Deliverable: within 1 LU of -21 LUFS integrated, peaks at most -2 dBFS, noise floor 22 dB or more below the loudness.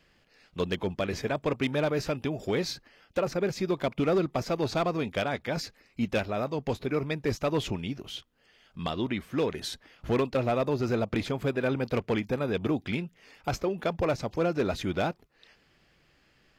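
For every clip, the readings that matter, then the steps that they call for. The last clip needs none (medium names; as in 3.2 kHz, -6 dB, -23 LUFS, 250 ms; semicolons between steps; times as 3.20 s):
clipped samples 0.8%; clipping level -20.0 dBFS; loudness -30.0 LUFS; peak level -20.0 dBFS; loudness target -21.0 LUFS
-> clip repair -20 dBFS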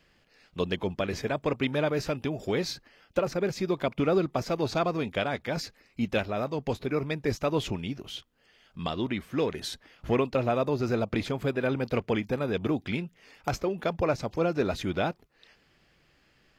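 clipped samples 0.0%; loudness -30.0 LUFS; peak level -12.0 dBFS; loudness target -21.0 LUFS
-> trim +9 dB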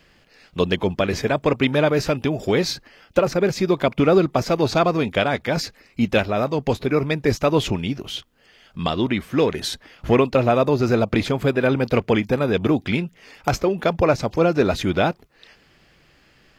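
loudness -21.0 LUFS; peak level -3.0 dBFS; noise floor -56 dBFS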